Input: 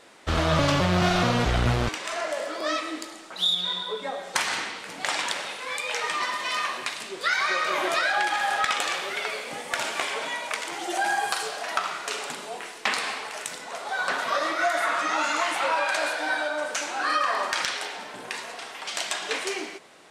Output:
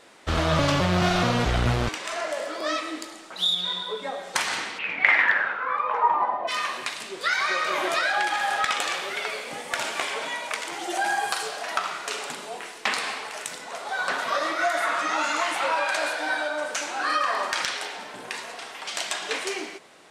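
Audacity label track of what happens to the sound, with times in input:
4.780000	6.470000	resonant low-pass 2.7 kHz -> 710 Hz, resonance Q 8.4

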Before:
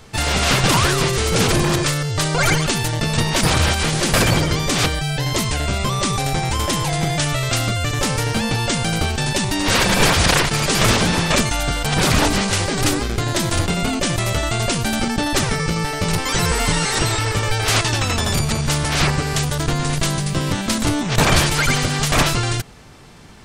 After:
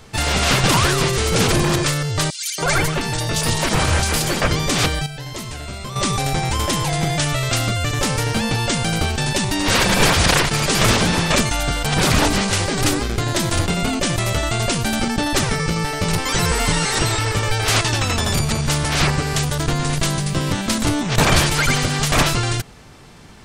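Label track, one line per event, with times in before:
2.300000	4.480000	three bands offset in time highs, mids, lows 280/310 ms, splits 200/3200 Hz
5.060000	5.960000	feedback comb 120 Hz, decay 1.5 s, mix 70%

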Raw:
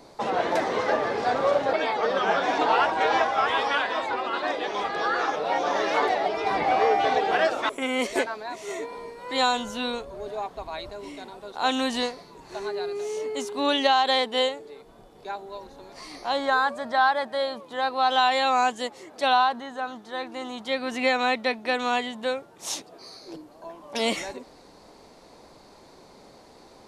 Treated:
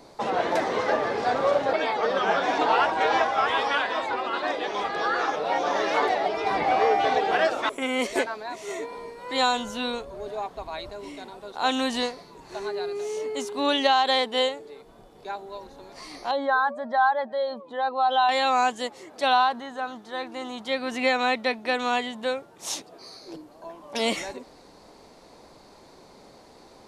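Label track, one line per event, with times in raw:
16.310000	18.290000	spectral contrast enhancement exponent 1.5

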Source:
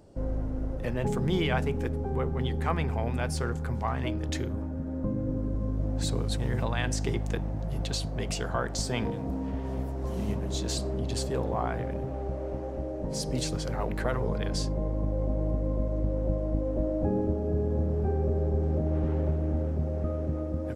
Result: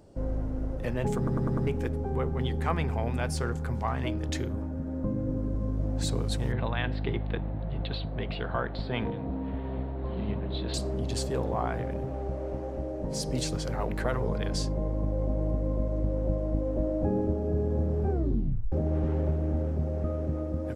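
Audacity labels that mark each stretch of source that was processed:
1.170000	1.170000	stutter in place 0.10 s, 5 plays
6.520000	10.740000	elliptic low-pass 4 kHz
18.100000	18.100000	tape stop 0.62 s

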